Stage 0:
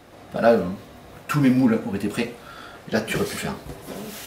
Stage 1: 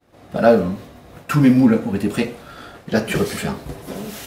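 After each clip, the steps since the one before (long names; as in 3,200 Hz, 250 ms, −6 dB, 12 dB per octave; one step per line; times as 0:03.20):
low-shelf EQ 470 Hz +4 dB
downward expander −37 dBFS
level +2 dB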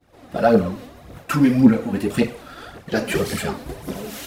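in parallel at −3 dB: brickwall limiter −11.5 dBFS, peak gain reduction 10 dB
on the sum: phase shifter 1.8 Hz, delay 4.2 ms, feedback 53%
level −6 dB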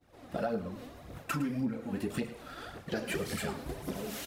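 downward compressor 5 to 1, threshold −25 dBFS, peak gain reduction 16.5 dB
single-tap delay 109 ms −15 dB
level −6.5 dB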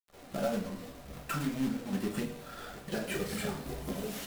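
log-companded quantiser 4 bits
rectangular room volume 160 cubic metres, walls furnished, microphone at 1.2 metres
level −3 dB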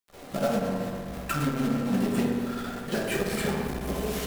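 delay with a low-pass on its return 63 ms, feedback 83%, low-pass 2,200 Hz, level −6 dB
saturating transformer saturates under 280 Hz
level +6.5 dB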